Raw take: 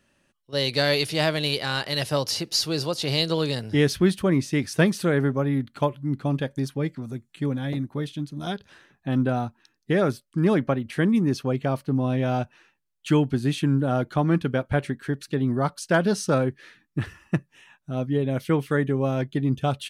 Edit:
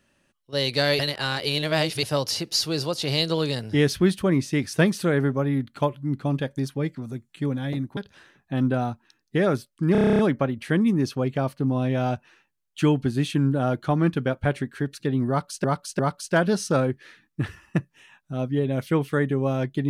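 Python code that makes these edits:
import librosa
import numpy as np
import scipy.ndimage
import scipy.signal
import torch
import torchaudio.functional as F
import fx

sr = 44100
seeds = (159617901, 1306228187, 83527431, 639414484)

y = fx.edit(x, sr, fx.reverse_span(start_s=0.99, length_s=1.04),
    fx.cut(start_s=7.97, length_s=0.55),
    fx.stutter(start_s=10.47, slice_s=0.03, count=10),
    fx.repeat(start_s=15.57, length_s=0.35, count=3), tone=tone)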